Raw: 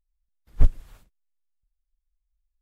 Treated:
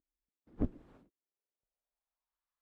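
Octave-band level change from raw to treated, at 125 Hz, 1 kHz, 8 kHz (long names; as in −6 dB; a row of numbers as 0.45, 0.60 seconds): −15.0 dB, −7.0 dB, can't be measured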